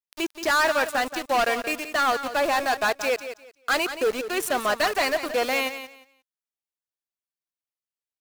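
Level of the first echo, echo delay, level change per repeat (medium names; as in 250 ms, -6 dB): -11.0 dB, 176 ms, -13.5 dB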